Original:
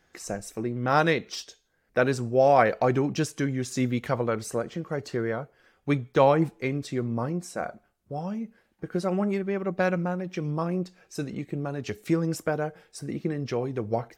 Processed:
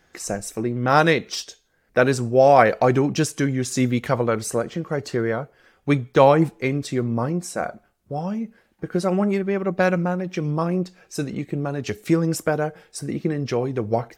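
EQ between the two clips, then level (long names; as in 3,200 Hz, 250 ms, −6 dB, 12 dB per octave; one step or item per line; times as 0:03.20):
dynamic equaliser 9,700 Hz, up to +4 dB, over −49 dBFS, Q 0.79
+5.5 dB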